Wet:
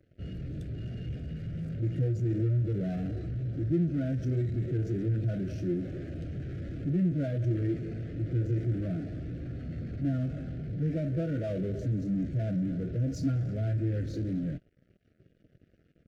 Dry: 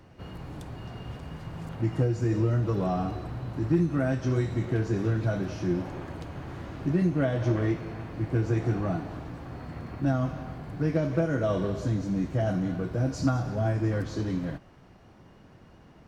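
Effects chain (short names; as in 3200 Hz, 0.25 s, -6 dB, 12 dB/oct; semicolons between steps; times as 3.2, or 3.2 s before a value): in parallel at -9 dB: fuzz box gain 44 dB, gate -51 dBFS; on the sum: Butterworth band-stop 950 Hz, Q 1.2; spectral expander 1.5:1; gain -8.5 dB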